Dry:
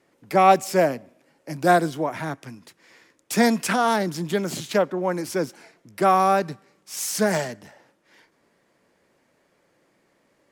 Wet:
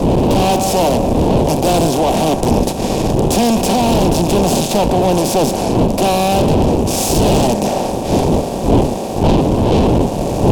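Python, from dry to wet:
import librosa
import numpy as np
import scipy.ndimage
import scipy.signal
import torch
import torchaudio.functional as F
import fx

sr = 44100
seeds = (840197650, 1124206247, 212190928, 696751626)

p1 = fx.bin_compress(x, sr, power=0.4)
p2 = fx.dmg_wind(p1, sr, seeds[0], corner_hz=480.0, level_db=-19.0)
p3 = fx.low_shelf(p2, sr, hz=480.0, db=5.5)
p4 = fx.tube_stage(p3, sr, drive_db=19.0, bias=0.8)
p5 = fx.rider(p4, sr, range_db=10, speed_s=0.5)
p6 = p4 + (p5 * 10.0 ** (1.5 / 20.0))
p7 = fx.band_shelf(p6, sr, hz=1600.0, db=-15.5, octaves=1.1)
y = p7 * 10.0 ** (3.0 / 20.0)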